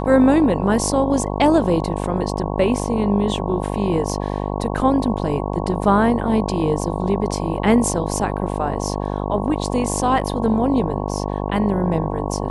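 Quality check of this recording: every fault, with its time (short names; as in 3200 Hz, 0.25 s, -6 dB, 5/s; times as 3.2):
buzz 50 Hz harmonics 22 -24 dBFS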